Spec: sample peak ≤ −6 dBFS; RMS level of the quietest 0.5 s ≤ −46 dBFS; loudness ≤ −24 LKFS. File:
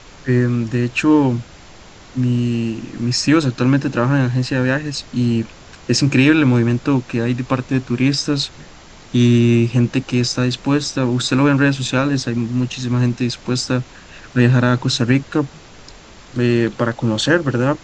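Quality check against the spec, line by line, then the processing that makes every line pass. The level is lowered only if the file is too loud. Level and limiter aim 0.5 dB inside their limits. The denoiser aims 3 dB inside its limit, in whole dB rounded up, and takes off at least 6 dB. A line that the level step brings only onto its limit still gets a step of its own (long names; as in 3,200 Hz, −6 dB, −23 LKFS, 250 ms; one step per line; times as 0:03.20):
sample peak −2.0 dBFS: out of spec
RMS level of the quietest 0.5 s −41 dBFS: out of spec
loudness −17.5 LKFS: out of spec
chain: level −7 dB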